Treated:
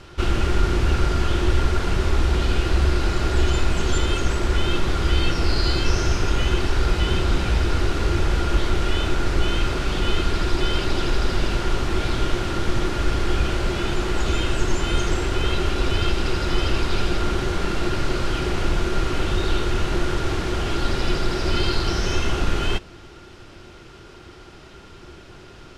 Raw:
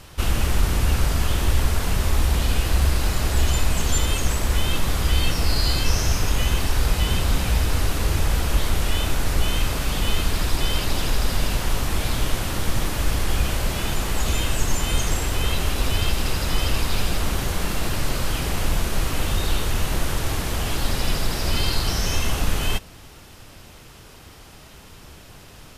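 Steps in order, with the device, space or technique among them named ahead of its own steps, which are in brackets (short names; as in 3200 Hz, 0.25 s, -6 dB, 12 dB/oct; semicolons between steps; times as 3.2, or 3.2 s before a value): inside a cardboard box (LPF 5200 Hz 12 dB/oct; small resonant body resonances 360/1400 Hz, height 13 dB, ringing for 65 ms)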